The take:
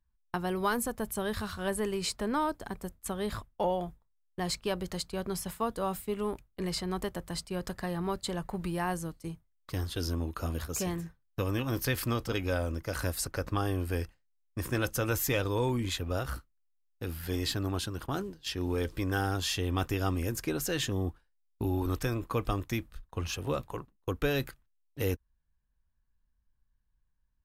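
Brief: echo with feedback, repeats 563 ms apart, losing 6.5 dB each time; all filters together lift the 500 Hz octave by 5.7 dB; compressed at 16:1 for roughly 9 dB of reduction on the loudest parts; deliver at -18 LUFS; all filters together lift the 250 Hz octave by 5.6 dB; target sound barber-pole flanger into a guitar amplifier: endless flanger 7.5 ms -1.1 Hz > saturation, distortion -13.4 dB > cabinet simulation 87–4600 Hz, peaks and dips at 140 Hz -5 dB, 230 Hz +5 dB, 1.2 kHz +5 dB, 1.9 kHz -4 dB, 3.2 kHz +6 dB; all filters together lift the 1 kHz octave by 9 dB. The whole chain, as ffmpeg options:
-filter_complex "[0:a]equalizer=f=250:t=o:g=3.5,equalizer=f=500:t=o:g=4,equalizer=f=1000:t=o:g=7.5,acompressor=threshold=0.0398:ratio=16,aecho=1:1:563|1126|1689|2252|2815|3378:0.473|0.222|0.105|0.0491|0.0231|0.0109,asplit=2[s0][s1];[s1]adelay=7.5,afreqshift=-1.1[s2];[s0][s2]amix=inputs=2:normalize=1,asoftclip=threshold=0.0282,highpass=87,equalizer=f=140:t=q:w=4:g=-5,equalizer=f=230:t=q:w=4:g=5,equalizer=f=1200:t=q:w=4:g=5,equalizer=f=1900:t=q:w=4:g=-4,equalizer=f=3200:t=q:w=4:g=6,lowpass=f=4600:w=0.5412,lowpass=f=4600:w=1.3066,volume=10.6"

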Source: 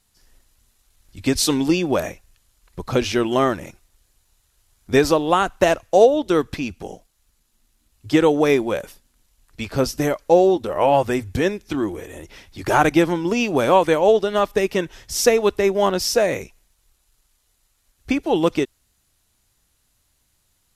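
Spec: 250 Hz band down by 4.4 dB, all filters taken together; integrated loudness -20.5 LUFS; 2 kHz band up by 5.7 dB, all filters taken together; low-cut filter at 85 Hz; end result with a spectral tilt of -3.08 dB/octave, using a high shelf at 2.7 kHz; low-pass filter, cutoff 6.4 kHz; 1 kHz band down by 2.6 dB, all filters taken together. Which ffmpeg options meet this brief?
-af "highpass=85,lowpass=6400,equalizer=f=250:t=o:g=-6,equalizer=f=1000:t=o:g=-5.5,equalizer=f=2000:t=o:g=5.5,highshelf=f=2700:g=7.5,volume=0.944"

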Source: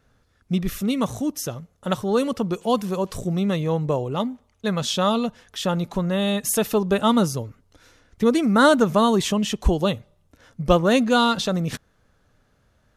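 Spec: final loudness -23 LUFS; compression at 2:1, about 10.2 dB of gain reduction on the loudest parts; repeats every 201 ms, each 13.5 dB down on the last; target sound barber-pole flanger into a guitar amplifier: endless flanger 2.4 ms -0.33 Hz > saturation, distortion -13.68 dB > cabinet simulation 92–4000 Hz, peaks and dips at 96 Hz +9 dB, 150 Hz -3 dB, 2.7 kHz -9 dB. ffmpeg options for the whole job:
-filter_complex "[0:a]acompressor=threshold=0.0316:ratio=2,aecho=1:1:201|402:0.211|0.0444,asplit=2[s0][s1];[s1]adelay=2.4,afreqshift=-0.33[s2];[s0][s2]amix=inputs=2:normalize=1,asoftclip=threshold=0.0501,highpass=92,equalizer=f=96:t=q:w=4:g=9,equalizer=f=150:t=q:w=4:g=-3,equalizer=f=2700:t=q:w=4:g=-9,lowpass=f=4000:w=0.5412,lowpass=f=4000:w=1.3066,volume=3.98"

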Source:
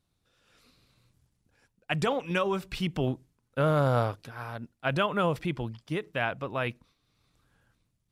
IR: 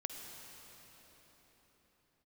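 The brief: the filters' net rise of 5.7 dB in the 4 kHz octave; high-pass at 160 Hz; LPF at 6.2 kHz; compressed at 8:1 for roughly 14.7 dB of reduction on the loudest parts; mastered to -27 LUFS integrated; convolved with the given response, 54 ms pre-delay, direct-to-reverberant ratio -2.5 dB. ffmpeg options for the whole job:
-filter_complex "[0:a]highpass=160,lowpass=6200,equalizer=f=4000:t=o:g=8.5,acompressor=threshold=0.0158:ratio=8,asplit=2[s0][s1];[1:a]atrim=start_sample=2205,adelay=54[s2];[s1][s2]afir=irnorm=-1:irlink=0,volume=1.41[s3];[s0][s3]amix=inputs=2:normalize=0,volume=3.35"

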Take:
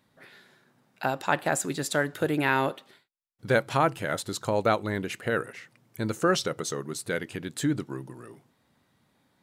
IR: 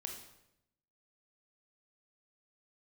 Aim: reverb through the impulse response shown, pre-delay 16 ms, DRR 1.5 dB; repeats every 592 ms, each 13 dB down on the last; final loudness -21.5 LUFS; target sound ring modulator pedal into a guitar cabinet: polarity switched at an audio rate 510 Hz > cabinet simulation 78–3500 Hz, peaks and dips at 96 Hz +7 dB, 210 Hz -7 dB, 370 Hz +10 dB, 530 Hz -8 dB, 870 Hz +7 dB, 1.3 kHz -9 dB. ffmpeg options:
-filter_complex "[0:a]aecho=1:1:592|1184|1776:0.224|0.0493|0.0108,asplit=2[s0][s1];[1:a]atrim=start_sample=2205,adelay=16[s2];[s1][s2]afir=irnorm=-1:irlink=0,volume=1.06[s3];[s0][s3]amix=inputs=2:normalize=0,aeval=exprs='val(0)*sgn(sin(2*PI*510*n/s))':c=same,highpass=78,equalizer=f=96:t=q:w=4:g=7,equalizer=f=210:t=q:w=4:g=-7,equalizer=f=370:t=q:w=4:g=10,equalizer=f=530:t=q:w=4:g=-8,equalizer=f=870:t=q:w=4:g=7,equalizer=f=1300:t=q:w=4:g=-9,lowpass=f=3500:w=0.5412,lowpass=f=3500:w=1.3066,volume=1.58"

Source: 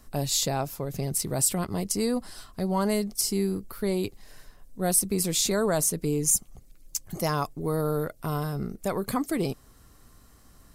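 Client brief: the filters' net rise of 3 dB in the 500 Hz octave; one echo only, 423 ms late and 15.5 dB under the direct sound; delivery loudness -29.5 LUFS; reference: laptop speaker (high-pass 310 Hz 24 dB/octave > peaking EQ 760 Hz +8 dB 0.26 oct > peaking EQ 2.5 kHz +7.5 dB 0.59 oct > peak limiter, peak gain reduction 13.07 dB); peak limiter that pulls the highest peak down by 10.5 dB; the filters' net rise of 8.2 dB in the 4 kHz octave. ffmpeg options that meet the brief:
-af "equalizer=f=500:t=o:g=3,equalizer=f=4000:t=o:g=8.5,alimiter=limit=0.119:level=0:latency=1,highpass=f=310:w=0.5412,highpass=f=310:w=1.3066,equalizer=f=760:t=o:w=0.26:g=8,equalizer=f=2500:t=o:w=0.59:g=7.5,aecho=1:1:423:0.168,volume=2.37,alimiter=limit=0.1:level=0:latency=1"

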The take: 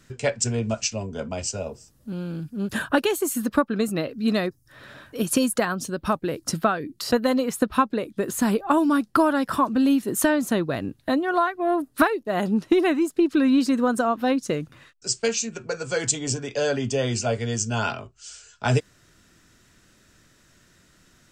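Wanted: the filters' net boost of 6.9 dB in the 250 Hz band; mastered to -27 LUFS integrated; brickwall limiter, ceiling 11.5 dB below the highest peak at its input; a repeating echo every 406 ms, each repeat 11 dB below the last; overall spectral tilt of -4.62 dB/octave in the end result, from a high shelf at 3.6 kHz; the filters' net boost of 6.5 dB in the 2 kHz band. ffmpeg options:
-af "equalizer=f=250:t=o:g=8,equalizer=f=2000:t=o:g=6.5,highshelf=f=3600:g=8.5,alimiter=limit=0.224:level=0:latency=1,aecho=1:1:406|812|1218:0.282|0.0789|0.0221,volume=0.596"

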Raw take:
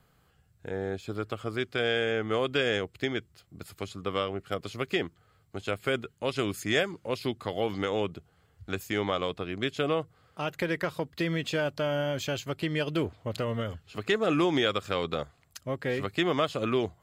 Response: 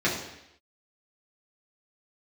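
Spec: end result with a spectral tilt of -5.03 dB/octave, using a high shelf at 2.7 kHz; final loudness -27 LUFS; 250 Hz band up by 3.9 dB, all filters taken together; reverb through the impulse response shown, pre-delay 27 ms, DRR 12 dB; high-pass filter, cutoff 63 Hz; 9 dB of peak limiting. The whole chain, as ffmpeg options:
-filter_complex "[0:a]highpass=63,equalizer=f=250:t=o:g=5.5,highshelf=f=2700:g=-3,alimiter=limit=0.0841:level=0:latency=1,asplit=2[s0][s1];[1:a]atrim=start_sample=2205,adelay=27[s2];[s1][s2]afir=irnorm=-1:irlink=0,volume=0.0531[s3];[s0][s3]amix=inputs=2:normalize=0,volume=2"

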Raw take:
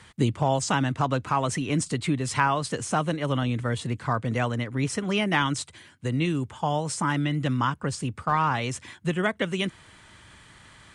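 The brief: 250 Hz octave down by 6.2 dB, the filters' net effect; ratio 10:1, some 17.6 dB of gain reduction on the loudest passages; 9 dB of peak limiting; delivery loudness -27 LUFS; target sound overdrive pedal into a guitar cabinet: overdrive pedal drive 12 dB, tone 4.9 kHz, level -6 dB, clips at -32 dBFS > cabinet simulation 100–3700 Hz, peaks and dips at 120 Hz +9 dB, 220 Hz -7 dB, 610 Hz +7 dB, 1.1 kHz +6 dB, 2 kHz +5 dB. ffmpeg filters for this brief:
-filter_complex "[0:a]equalizer=f=250:t=o:g=-8.5,acompressor=threshold=0.0126:ratio=10,alimiter=level_in=2.66:limit=0.0631:level=0:latency=1,volume=0.376,asplit=2[s0][s1];[s1]highpass=f=720:p=1,volume=3.98,asoftclip=type=tanh:threshold=0.0251[s2];[s0][s2]amix=inputs=2:normalize=0,lowpass=f=4900:p=1,volume=0.501,highpass=100,equalizer=f=120:t=q:w=4:g=9,equalizer=f=220:t=q:w=4:g=-7,equalizer=f=610:t=q:w=4:g=7,equalizer=f=1100:t=q:w=4:g=6,equalizer=f=2000:t=q:w=4:g=5,lowpass=f=3700:w=0.5412,lowpass=f=3700:w=1.3066,volume=4.47"

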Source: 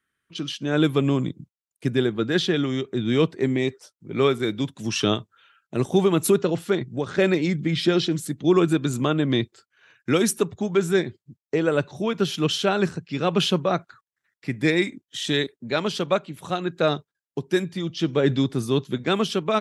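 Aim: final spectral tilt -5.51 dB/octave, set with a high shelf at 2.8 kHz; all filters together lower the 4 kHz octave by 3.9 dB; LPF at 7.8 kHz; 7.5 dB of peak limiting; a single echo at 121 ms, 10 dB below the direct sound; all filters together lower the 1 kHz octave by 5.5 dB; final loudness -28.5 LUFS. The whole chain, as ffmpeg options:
-af "lowpass=7800,equalizer=f=1000:t=o:g=-8.5,highshelf=f=2800:g=5.5,equalizer=f=4000:t=o:g=-8.5,alimiter=limit=0.158:level=0:latency=1,aecho=1:1:121:0.316,volume=0.841"

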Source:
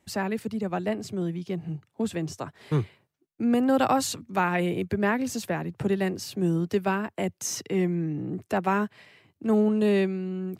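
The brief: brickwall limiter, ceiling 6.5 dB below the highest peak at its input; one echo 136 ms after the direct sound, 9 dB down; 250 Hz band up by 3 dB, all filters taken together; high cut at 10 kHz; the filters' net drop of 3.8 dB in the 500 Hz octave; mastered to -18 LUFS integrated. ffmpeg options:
-af "lowpass=10000,equalizer=f=250:t=o:g=5.5,equalizer=f=500:t=o:g=-7.5,alimiter=limit=0.133:level=0:latency=1,aecho=1:1:136:0.355,volume=2.82"

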